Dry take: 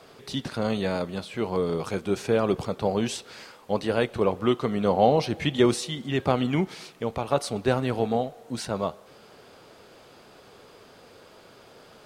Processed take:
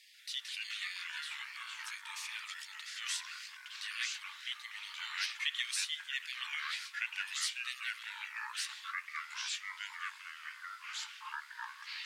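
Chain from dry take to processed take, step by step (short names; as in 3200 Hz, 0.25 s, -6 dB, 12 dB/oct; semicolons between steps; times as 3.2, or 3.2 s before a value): brick-wall FIR high-pass 1700 Hz; echoes that change speed 0.138 s, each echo -4 st, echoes 3; gain -3 dB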